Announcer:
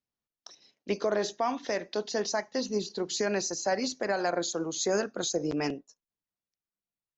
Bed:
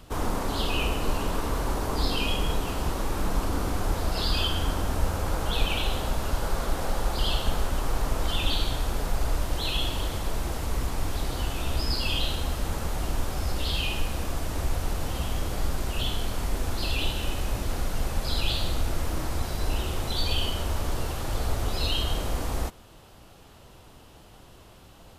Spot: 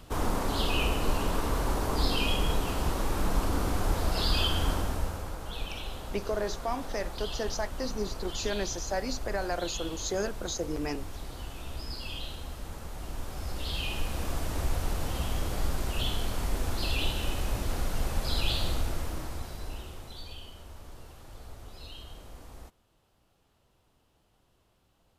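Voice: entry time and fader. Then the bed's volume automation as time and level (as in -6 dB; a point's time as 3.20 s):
5.25 s, -3.5 dB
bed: 4.73 s -1 dB
5.37 s -11 dB
12.89 s -11 dB
14.31 s -2 dB
18.71 s -2 dB
20.44 s -18.5 dB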